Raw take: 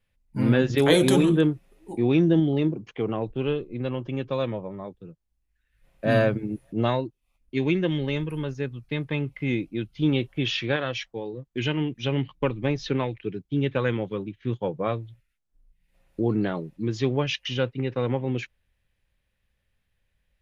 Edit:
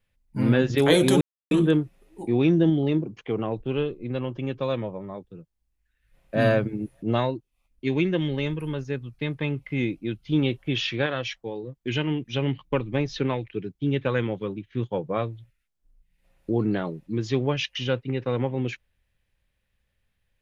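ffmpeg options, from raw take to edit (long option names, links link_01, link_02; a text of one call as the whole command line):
ffmpeg -i in.wav -filter_complex "[0:a]asplit=2[link_01][link_02];[link_01]atrim=end=1.21,asetpts=PTS-STARTPTS,afade=type=out:start_time=1.206:duration=0.004:curve=hsin,apad=pad_dur=0.3[link_03];[link_02]atrim=start=1.21,asetpts=PTS-STARTPTS,afade=type=in:duration=0.004:curve=hsin[link_04];[link_03][link_04]concat=n=2:v=0:a=1" out.wav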